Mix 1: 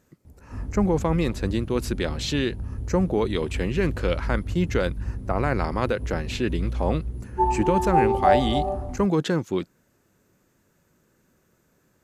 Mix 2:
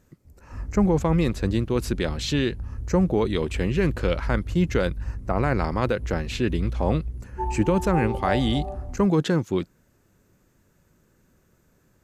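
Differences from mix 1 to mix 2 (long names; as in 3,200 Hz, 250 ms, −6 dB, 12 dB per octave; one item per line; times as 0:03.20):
background −8.5 dB
master: add low-shelf EQ 92 Hz +11.5 dB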